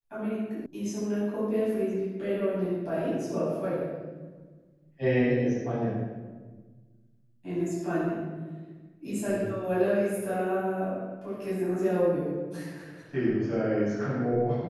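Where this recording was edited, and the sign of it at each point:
0:00.66: cut off before it has died away

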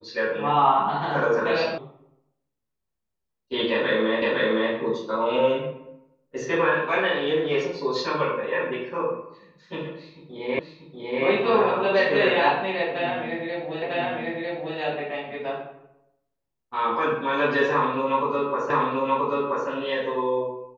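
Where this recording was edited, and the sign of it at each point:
0:01.78: cut off before it has died away
0:04.22: the same again, the last 0.51 s
0:10.59: the same again, the last 0.64 s
0:13.82: the same again, the last 0.95 s
0:18.70: the same again, the last 0.98 s

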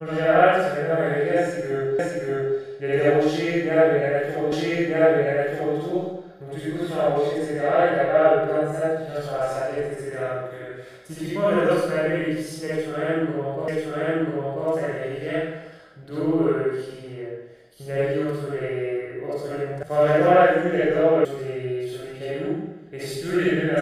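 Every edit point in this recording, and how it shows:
0:01.99: the same again, the last 0.58 s
0:04.52: the same again, the last 1.24 s
0:13.68: the same again, the last 0.99 s
0:19.83: cut off before it has died away
0:21.25: cut off before it has died away

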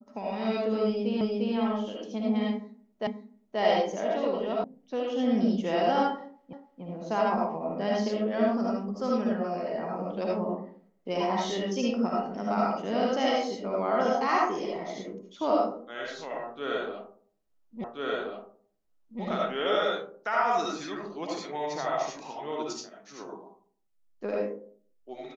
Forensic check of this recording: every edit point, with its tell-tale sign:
0:01.21: the same again, the last 0.35 s
0:03.07: the same again, the last 0.53 s
0:04.64: cut off before it has died away
0:06.53: the same again, the last 0.29 s
0:17.84: the same again, the last 1.38 s

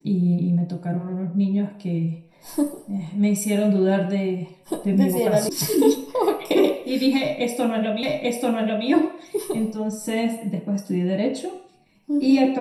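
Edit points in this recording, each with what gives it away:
0:05.49: cut off before it has died away
0:08.03: the same again, the last 0.84 s

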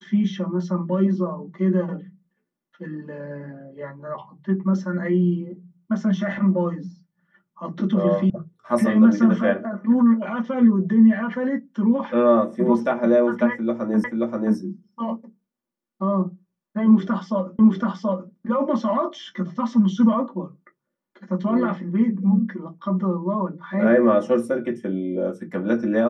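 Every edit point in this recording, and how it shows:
0:08.30: cut off before it has died away
0:14.04: the same again, the last 0.53 s
0:17.59: the same again, the last 0.73 s

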